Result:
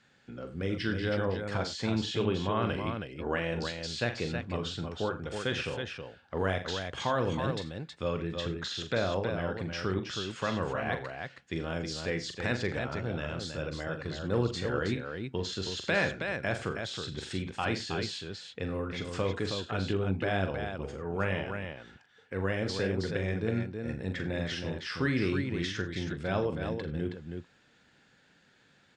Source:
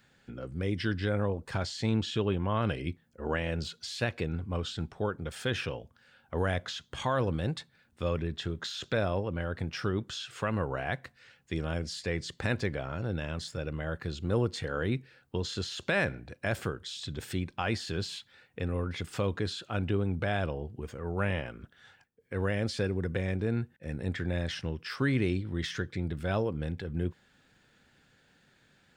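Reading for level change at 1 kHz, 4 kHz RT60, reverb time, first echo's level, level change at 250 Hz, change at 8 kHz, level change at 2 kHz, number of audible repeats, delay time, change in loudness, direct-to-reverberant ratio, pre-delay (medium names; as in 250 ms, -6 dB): +1.5 dB, no reverb, no reverb, -8.5 dB, 0.0 dB, 0.0 dB, +1.5 dB, 3, 42 ms, 0.0 dB, no reverb, no reverb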